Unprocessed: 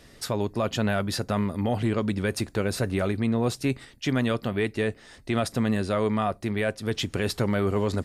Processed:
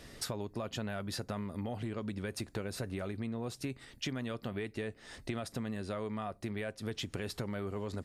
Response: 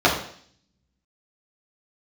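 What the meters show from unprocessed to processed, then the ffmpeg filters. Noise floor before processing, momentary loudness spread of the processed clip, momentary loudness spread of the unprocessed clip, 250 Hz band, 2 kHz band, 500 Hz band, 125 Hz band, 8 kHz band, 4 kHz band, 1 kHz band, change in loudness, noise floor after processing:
-52 dBFS, 2 LU, 4 LU, -12.5 dB, -12.0 dB, -13.0 dB, -12.0 dB, -8.5 dB, -9.5 dB, -13.0 dB, -12.5 dB, -59 dBFS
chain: -af "acompressor=threshold=0.0178:ratio=10"

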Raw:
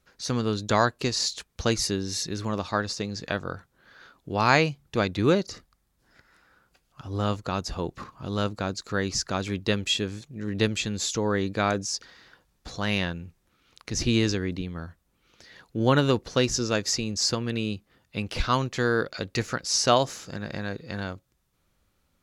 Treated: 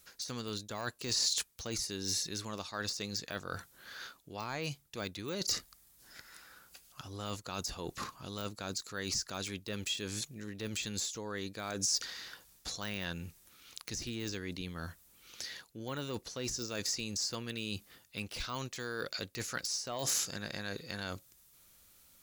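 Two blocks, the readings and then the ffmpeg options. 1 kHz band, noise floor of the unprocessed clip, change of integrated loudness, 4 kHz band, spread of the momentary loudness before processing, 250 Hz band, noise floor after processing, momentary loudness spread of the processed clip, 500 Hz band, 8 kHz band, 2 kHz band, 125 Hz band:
-15.5 dB, -71 dBFS, -10.5 dB, -7.0 dB, 13 LU, -14.5 dB, -64 dBFS, 14 LU, -15.0 dB, -4.0 dB, -11.5 dB, -14.5 dB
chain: -af "deesser=0.95,lowshelf=f=210:g=-3,areverse,acompressor=threshold=0.0112:ratio=6,areverse,crystalizer=i=5:c=0"

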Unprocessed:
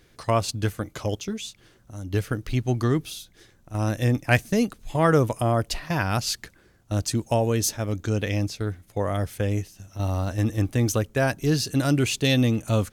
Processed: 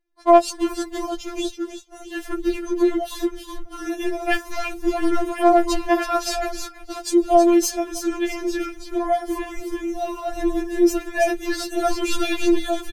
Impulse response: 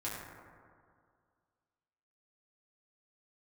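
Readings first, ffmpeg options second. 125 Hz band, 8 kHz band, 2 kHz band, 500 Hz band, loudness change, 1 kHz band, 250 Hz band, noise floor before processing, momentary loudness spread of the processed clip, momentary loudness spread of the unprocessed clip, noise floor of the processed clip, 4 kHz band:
under -25 dB, +0.5 dB, +1.0 dB, +6.0 dB, +3.0 dB, +8.0 dB, +4.5 dB, -58 dBFS, 14 LU, 10 LU, -42 dBFS, 0.0 dB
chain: -filter_complex "[0:a]tiltshelf=f=1200:g=4.5,aeval=exprs='clip(val(0),-1,0.224)':c=same,asplit=2[s0][s1];[s1]asplit=4[s2][s3][s4][s5];[s2]adelay=323,afreqshift=-74,volume=0.473[s6];[s3]adelay=646,afreqshift=-148,volume=0.157[s7];[s4]adelay=969,afreqshift=-222,volume=0.0513[s8];[s5]adelay=1292,afreqshift=-296,volume=0.017[s9];[s6][s7][s8][s9]amix=inputs=4:normalize=0[s10];[s0][s10]amix=inputs=2:normalize=0,agate=range=0.0224:threshold=0.0316:ratio=3:detection=peak,asplit=2[s11][s12];[s12]acompressor=threshold=0.0355:ratio=6,volume=1.26[s13];[s11][s13]amix=inputs=2:normalize=0,afftfilt=real='re*4*eq(mod(b,16),0)':imag='im*4*eq(mod(b,16),0)':win_size=2048:overlap=0.75,volume=1.41"

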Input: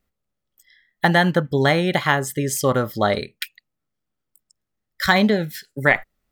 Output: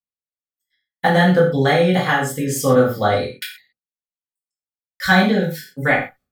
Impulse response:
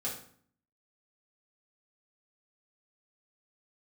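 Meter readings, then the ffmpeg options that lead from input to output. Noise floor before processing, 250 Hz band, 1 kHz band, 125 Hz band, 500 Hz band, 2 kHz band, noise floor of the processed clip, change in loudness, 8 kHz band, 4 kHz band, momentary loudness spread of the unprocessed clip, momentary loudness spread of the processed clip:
-80 dBFS, +3.5 dB, +2.5 dB, +3.0 dB, +4.0 dB, +1.5 dB, under -85 dBFS, +2.5 dB, +0.5 dB, +0.5 dB, 9 LU, 11 LU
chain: -filter_complex "[0:a]agate=range=0.0282:threshold=0.00282:ratio=16:detection=peak[s0];[1:a]atrim=start_sample=2205,atrim=end_sample=6174[s1];[s0][s1]afir=irnorm=-1:irlink=0,volume=0.891"

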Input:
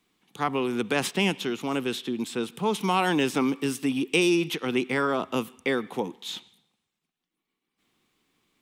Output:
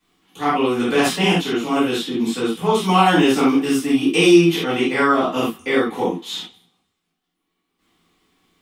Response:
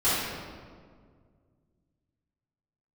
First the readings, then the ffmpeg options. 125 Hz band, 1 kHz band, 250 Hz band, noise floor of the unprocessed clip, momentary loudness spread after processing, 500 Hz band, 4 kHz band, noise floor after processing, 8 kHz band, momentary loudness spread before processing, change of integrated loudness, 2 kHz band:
+9.0 dB, +10.0 dB, +9.5 dB, -84 dBFS, 10 LU, +9.0 dB, +8.0 dB, -76 dBFS, +6.5 dB, 8 LU, +9.0 dB, +7.0 dB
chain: -filter_complex "[1:a]atrim=start_sample=2205,atrim=end_sample=4410[s0];[0:a][s0]afir=irnorm=-1:irlink=0,volume=0.631"

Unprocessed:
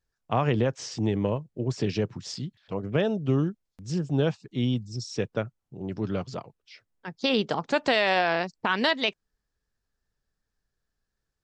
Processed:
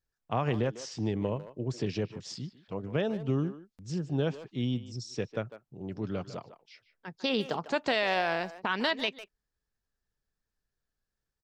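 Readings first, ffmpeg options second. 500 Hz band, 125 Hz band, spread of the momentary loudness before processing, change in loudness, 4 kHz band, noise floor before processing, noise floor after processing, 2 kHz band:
-5.0 dB, -5.0 dB, 13 LU, -5.0 dB, -5.0 dB, -83 dBFS, under -85 dBFS, -5.0 dB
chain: -filter_complex "[0:a]asplit=2[s0][s1];[s1]adelay=150,highpass=300,lowpass=3400,asoftclip=type=hard:threshold=0.0794,volume=0.251[s2];[s0][s2]amix=inputs=2:normalize=0,volume=0.562"

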